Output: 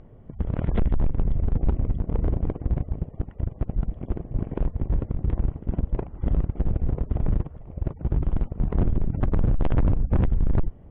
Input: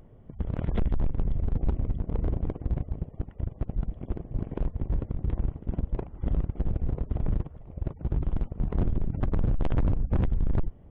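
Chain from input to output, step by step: low-pass 3.2 kHz 12 dB/octave; trim +4 dB

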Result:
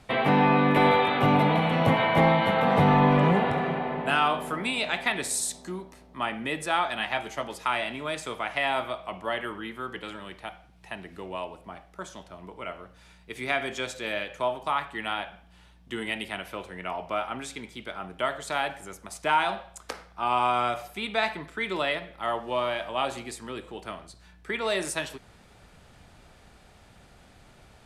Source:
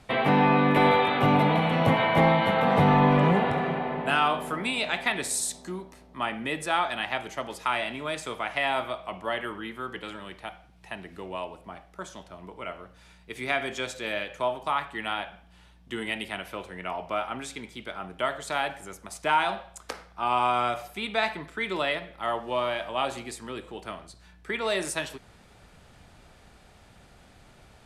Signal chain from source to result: 6.97–7.48 s: doubling 14 ms -7 dB

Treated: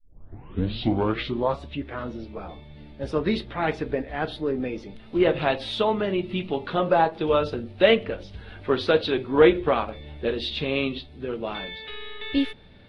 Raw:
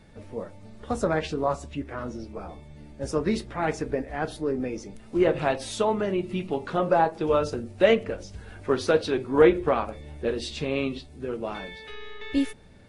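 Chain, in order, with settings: tape start-up on the opening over 1.60 s; resonant high shelf 5.1 kHz -12.5 dB, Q 3; trim +1 dB

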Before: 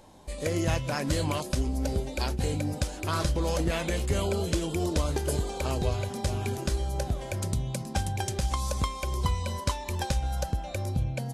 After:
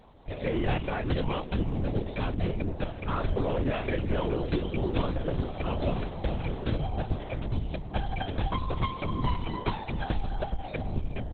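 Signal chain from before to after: 2.46–4.48 s: Bessel low-pass 3.1 kHz, order 2; on a send: feedback delay 379 ms, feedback 60%, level -19.5 dB; on the sum: LPC vocoder at 8 kHz whisper; Opus 16 kbps 48 kHz

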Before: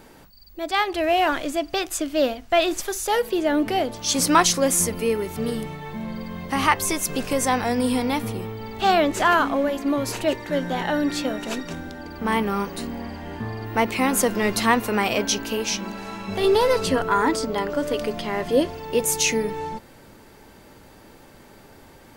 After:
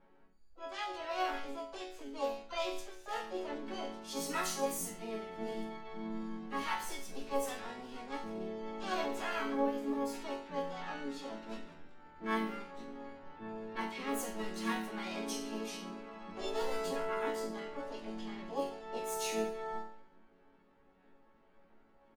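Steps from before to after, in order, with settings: chord resonator F#3 minor, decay 0.56 s; level-controlled noise filter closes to 1.5 kHz, open at -34 dBFS; harmony voices -3 st -17 dB, +7 st -6 dB, +12 st -12 dB; trim +1 dB

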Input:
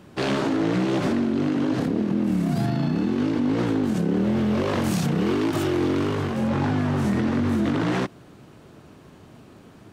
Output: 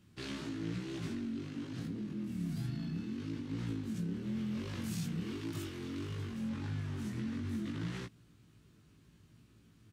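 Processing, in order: amplifier tone stack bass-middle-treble 6-0-2; doubling 18 ms -3.5 dB; trim +1 dB

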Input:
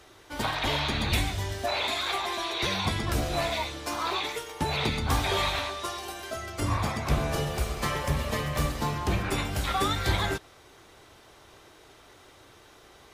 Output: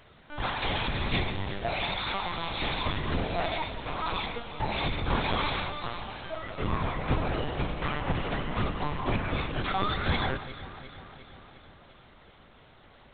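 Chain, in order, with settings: LPC vocoder at 8 kHz pitch kept; echo whose repeats swap between lows and highs 177 ms, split 1.4 kHz, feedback 77%, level -11.5 dB; trim -1.5 dB

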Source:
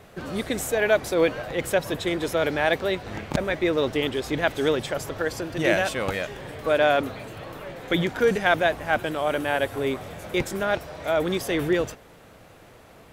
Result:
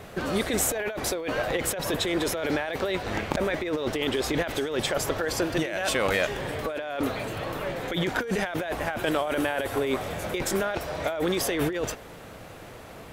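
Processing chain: dynamic bell 130 Hz, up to -6 dB, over -41 dBFS, Q 0.74; compressor with a negative ratio -29 dBFS, ratio -1; trim +2 dB

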